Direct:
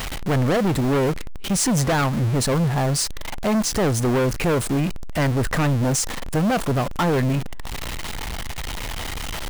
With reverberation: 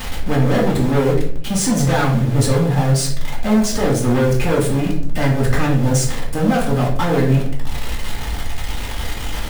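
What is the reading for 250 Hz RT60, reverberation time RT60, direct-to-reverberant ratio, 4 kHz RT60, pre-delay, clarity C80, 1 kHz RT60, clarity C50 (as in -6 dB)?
0.85 s, 0.60 s, -3.5 dB, 0.40 s, 3 ms, 10.0 dB, 0.50 s, 6.0 dB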